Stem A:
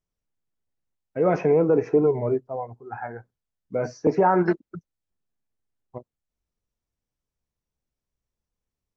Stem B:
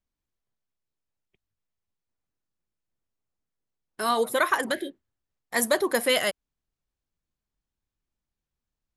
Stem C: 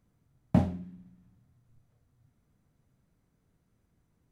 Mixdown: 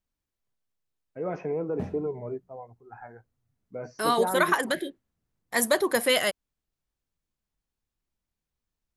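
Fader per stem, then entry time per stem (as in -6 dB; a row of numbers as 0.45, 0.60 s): -11.0, 0.0, -10.5 dB; 0.00, 0.00, 1.25 s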